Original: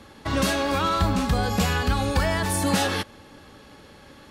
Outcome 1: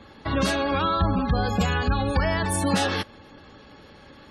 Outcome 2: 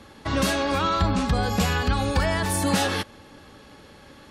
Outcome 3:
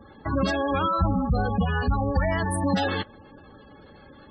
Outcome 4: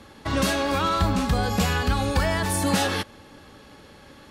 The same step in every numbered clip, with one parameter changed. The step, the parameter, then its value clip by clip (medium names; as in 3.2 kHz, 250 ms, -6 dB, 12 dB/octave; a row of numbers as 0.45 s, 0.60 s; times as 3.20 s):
spectral gate, under each frame's peak: -25 dB, -40 dB, -15 dB, -55 dB